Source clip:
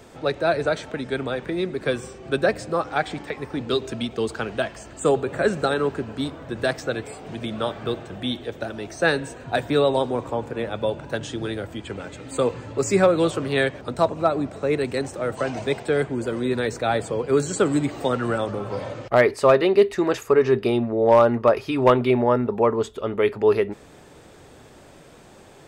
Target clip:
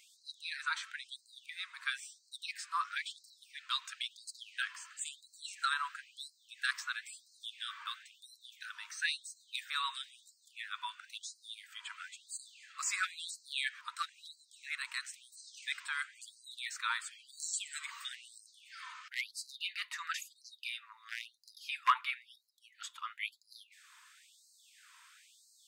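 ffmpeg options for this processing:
-af "afftfilt=real='re*gte(b*sr/1024,900*pow(4000/900,0.5+0.5*sin(2*PI*0.99*pts/sr)))':imag='im*gte(b*sr/1024,900*pow(4000/900,0.5+0.5*sin(2*PI*0.99*pts/sr)))':win_size=1024:overlap=0.75,volume=-5dB"

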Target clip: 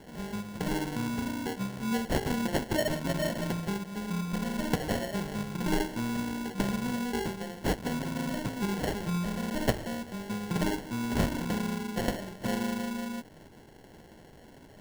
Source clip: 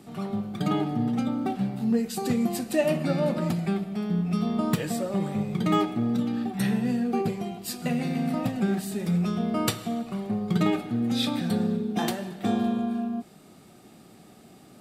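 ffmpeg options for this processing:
-af "crystalizer=i=5:c=0,acrusher=samples=36:mix=1:aa=0.000001,volume=-6.5dB"

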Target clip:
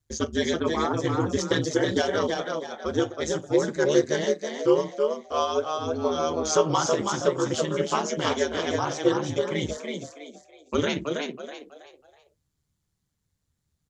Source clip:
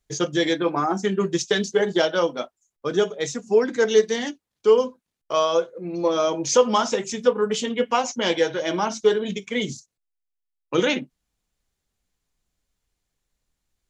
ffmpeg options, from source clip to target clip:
-filter_complex "[0:a]aeval=exprs='val(0)*sin(2*PI*75*n/s)':c=same,equalizer=f=100:t=o:w=0.67:g=3,equalizer=f=630:t=o:w=0.67:g=-4,equalizer=f=2.5k:t=o:w=0.67:g=-5,asplit=5[a][b][c][d][e];[b]adelay=324,afreqshift=64,volume=-4.5dB[f];[c]adelay=648,afreqshift=128,volume=-14.1dB[g];[d]adelay=972,afreqshift=192,volume=-23.8dB[h];[e]adelay=1296,afreqshift=256,volume=-33.4dB[i];[a][f][g][h][i]amix=inputs=5:normalize=0"

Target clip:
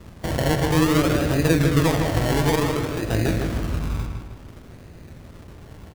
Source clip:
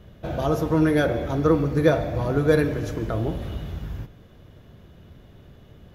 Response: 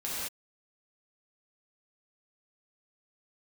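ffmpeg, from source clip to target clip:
-filter_complex "[0:a]asettb=1/sr,asplit=3[a][b][c];[a]atrim=end=2.494[d];[b]atrim=start=2.49:end=3.11,asetpts=PTS-STARTPTS,afade=t=in:d=0.004:c=qsin,afade=t=out:st=0.616:d=0.004:c=qsin,lowshelf=f=280:g=-7.5[e];[c]atrim=start=3.106[f];[d][e]acrossfade=d=0.004:c1=hsin:c2=qsin[g];[g][f]acrossfade=d=0.004:c1=qsin:c2=hsin,acrossover=split=290|600[h][i][j];[h]acompressor=threshold=-24dB:ratio=4[k];[i]acompressor=threshold=-29dB:ratio=4[l];[j]acompressor=threshold=-41dB:ratio=4[m];[k][l][m]amix=inputs=3:normalize=0,tremolo=f=170:d=0.667,acrusher=samples=28:mix=1:aa=0.000001:lfo=1:lforange=16.8:lforate=0.56,asplit=2[n][o];[o]adelay=157,lowpass=f=4.3k:p=1,volume=-5dB,asplit=2[p][q];[q]adelay=157,lowpass=f=4.3k:p=1,volume=0.44,asplit=2[r][s];[s]adelay=157,lowpass=f=4.3k:p=1,volume=0.44,asplit=2[t][u];[u]adelay=157,lowpass=f=4.3k:p=1,volume=0.44,asplit=2[v][w];[w]adelay=157,lowpass=f=4.3k:p=1,volume=0.44[x];[p][r][t][v][x]amix=inputs=5:normalize=0[y];[n][y]amix=inputs=2:normalize=0,volume=7.5dB"

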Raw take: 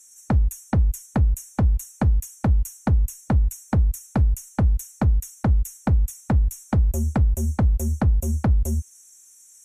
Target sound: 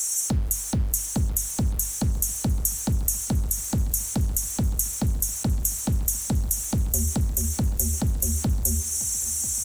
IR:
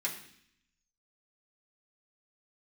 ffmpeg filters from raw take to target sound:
-filter_complex "[0:a]acrossover=split=310|720[a][b][c];[a]acompressor=threshold=-21dB:ratio=4[d];[b]acompressor=threshold=-34dB:ratio=4[e];[c]acompressor=threshold=-46dB:ratio=4[f];[d][e][f]amix=inputs=3:normalize=0,aexciter=amount=11.5:drive=5.6:freq=3.2k,asplit=2[g][h];[h]aecho=0:1:993|1986|2979|3972:0.126|0.0541|0.0233|0.01[i];[g][i]amix=inputs=2:normalize=0,alimiter=limit=-8dB:level=0:latency=1:release=247,bandreject=f=48.25:t=h:w=4,bandreject=f=96.5:t=h:w=4,bandreject=f=144.75:t=h:w=4,bandreject=f=193:t=h:w=4,bandreject=f=241.25:t=h:w=4,bandreject=f=289.5:t=h:w=4,bandreject=f=337.75:t=h:w=4,bandreject=f=386:t=h:w=4,aeval=exprs='val(0)*gte(abs(val(0)),0.0168)':c=same"

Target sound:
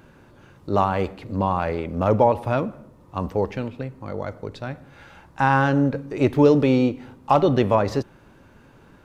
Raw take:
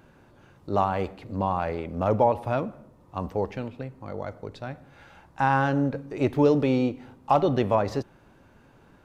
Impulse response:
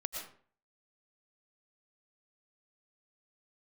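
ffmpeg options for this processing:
-af "equalizer=f=730:t=o:w=0.46:g=-3.5,volume=5dB"

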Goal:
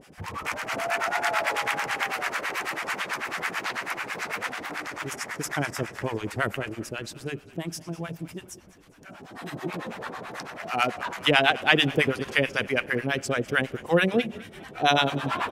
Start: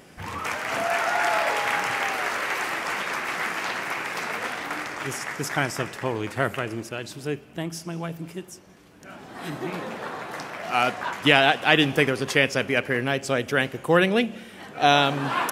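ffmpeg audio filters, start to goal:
-filter_complex "[0:a]acrossover=split=720[a][b];[a]aeval=exprs='val(0)*(1-1/2+1/2*cos(2*PI*9.1*n/s))':c=same[c];[b]aeval=exprs='val(0)*(1-1/2-1/2*cos(2*PI*9.1*n/s))':c=same[d];[c][d]amix=inputs=2:normalize=0,asplit=5[e][f][g][h][i];[f]adelay=202,afreqshift=-42,volume=-20dB[j];[g]adelay=404,afreqshift=-84,volume=-26.6dB[k];[h]adelay=606,afreqshift=-126,volume=-33.1dB[l];[i]adelay=808,afreqshift=-168,volume=-39.7dB[m];[e][j][k][l][m]amix=inputs=5:normalize=0,volume=2dB"

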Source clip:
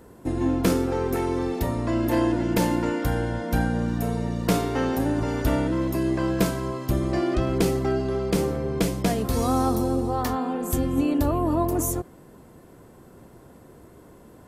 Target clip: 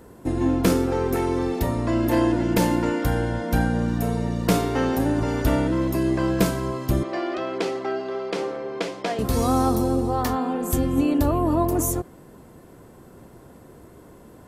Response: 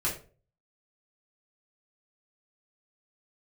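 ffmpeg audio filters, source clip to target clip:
-filter_complex "[0:a]asettb=1/sr,asplit=3[a][b][c];[a]atrim=end=7.034[d];[b]atrim=start=7.03:end=9.19,asetpts=PTS-STARTPTS,afade=t=in:d=0.004:c=qsin,afade=t=out:st=2.156:d=0.004:c=qsin,highpass=450,lowpass=4.3k[e];[c]atrim=start=9.186[f];[d][e]acrossfade=d=0.004:c1=hsin:c2=qsin[g];[g][f]acrossfade=d=0.004:c1=qsin:c2=hsin,volume=2dB"

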